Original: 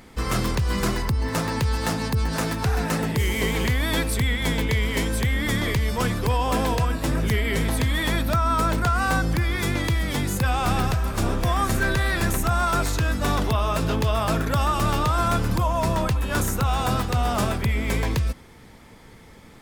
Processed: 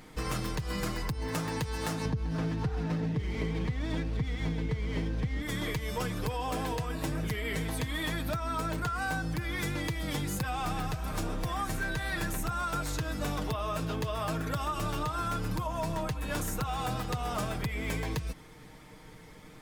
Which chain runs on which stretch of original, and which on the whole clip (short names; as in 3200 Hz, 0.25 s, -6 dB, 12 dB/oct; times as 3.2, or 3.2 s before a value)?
2.05–5.42 CVSD 32 kbps + low shelf 410 Hz +11.5 dB + running maximum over 3 samples
whole clip: comb 6.5 ms, depth 56%; compressor, threshold -25 dBFS; gain -4.5 dB